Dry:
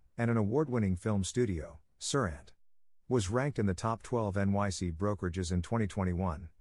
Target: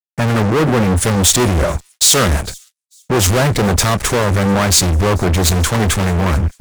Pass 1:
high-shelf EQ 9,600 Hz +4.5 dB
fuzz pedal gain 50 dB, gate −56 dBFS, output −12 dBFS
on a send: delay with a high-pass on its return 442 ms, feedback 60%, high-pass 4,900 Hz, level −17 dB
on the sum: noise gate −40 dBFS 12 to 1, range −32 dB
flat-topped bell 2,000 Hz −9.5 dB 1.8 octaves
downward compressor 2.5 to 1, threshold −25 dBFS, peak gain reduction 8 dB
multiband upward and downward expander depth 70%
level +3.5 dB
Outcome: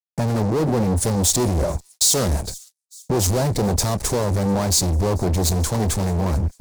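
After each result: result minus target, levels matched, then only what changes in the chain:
2,000 Hz band −9.0 dB; downward compressor: peak gain reduction +5.5 dB
remove: flat-topped bell 2,000 Hz −9.5 dB 1.8 octaves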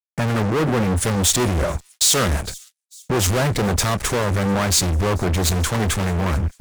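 downward compressor: peak gain reduction +5.5 dB
change: downward compressor 2.5 to 1, threshold −15.5 dBFS, peak gain reduction 2.5 dB

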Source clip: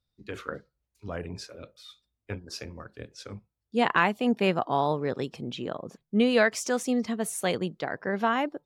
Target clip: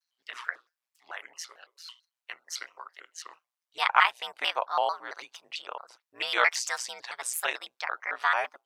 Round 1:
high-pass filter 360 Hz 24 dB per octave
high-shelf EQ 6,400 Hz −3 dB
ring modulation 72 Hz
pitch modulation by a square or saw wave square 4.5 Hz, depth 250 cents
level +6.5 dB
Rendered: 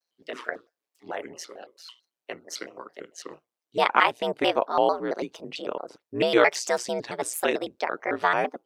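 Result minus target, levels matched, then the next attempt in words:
500 Hz band +10.0 dB
high-pass filter 900 Hz 24 dB per octave
high-shelf EQ 6,400 Hz −3 dB
ring modulation 72 Hz
pitch modulation by a square or saw wave square 4.5 Hz, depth 250 cents
level +6.5 dB

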